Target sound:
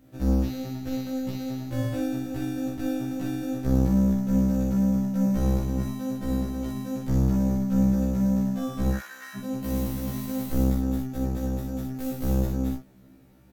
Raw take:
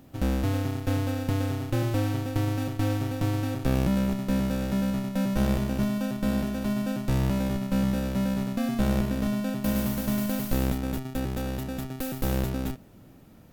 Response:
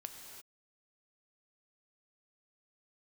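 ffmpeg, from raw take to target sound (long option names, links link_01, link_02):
-filter_complex "[0:a]asplit=3[link_01][link_02][link_03];[link_01]afade=type=out:start_time=8.92:duration=0.02[link_04];[link_02]highpass=frequency=1600:width_type=q:width=7.5,afade=type=in:start_time=8.92:duration=0.02,afade=type=out:start_time=9.35:duration=0.02[link_05];[link_03]afade=type=in:start_time=9.35:duration=0.02[link_06];[link_04][link_05][link_06]amix=inputs=3:normalize=0,aecho=1:1:16|42|61:0.299|0.501|0.631,afftfilt=real='re*1.73*eq(mod(b,3),0)':imag='im*1.73*eq(mod(b,3),0)':win_size=2048:overlap=0.75,volume=-4dB"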